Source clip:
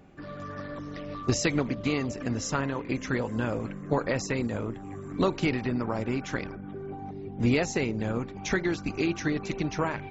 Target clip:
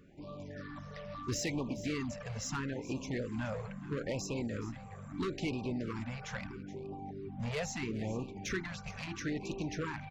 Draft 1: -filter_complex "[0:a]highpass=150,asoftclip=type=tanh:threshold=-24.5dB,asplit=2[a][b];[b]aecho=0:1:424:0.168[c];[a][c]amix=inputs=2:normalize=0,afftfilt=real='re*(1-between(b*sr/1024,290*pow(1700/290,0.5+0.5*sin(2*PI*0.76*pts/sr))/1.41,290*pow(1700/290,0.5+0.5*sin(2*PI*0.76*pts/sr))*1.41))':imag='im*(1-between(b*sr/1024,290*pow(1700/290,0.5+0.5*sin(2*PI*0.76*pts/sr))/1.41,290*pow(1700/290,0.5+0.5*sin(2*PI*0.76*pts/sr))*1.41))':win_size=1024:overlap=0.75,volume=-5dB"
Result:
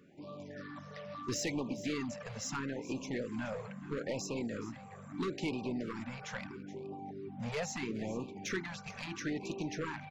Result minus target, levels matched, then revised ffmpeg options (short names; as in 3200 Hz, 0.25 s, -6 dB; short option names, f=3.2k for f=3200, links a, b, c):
125 Hz band -4.0 dB
-filter_complex "[0:a]asoftclip=type=tanh:threshold=-24.5dB,asplit=2[a][b];[b]aecho=0:1:424:0.168[c];[a][c]amix=inputs=2:normalize=0,afftfilt=real='re*(1-between(b*sr/1024,290*pow(1700/290,0.5+0.5*sin(2*PI*0.76*pts/sr))/1.41,290*pow(1700/290,0.5+0.5*sin(2*PI*0.76*pts/sr))*1.41))':imag='im*(1-between(b*sr/1024,290*pow(1700/290,0.5+0.5*sin(2*PI*0.76*pts/sr))/1.41,290*pow(1700/290,0.5+0.5*sin(2*PI*0.76*pts/sr))*1.41))':win_size=1024:overlap=0.75,volume=-5dB"